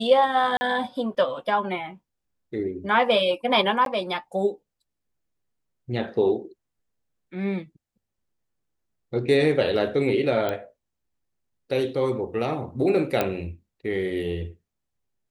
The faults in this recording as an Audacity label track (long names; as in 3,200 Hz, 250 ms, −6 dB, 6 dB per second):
0.570000	0.610000	drop-out 40 ms
3.850000	3.860000	drop-out 12 ms
10.490000	10.490000	click −14 dBFS
13.210000	13.210000	click −9 dBFS